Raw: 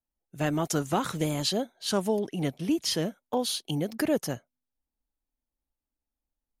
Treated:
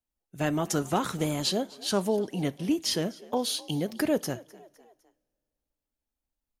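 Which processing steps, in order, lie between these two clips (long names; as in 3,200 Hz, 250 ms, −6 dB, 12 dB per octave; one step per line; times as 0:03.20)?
echo with shifted repeats 254 ms, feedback 50%, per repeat +55 Hz, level −22 dB
coupled-rooms reverb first 0.26 s, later 2.4 s, from −28 dB, DRR 14.5 dB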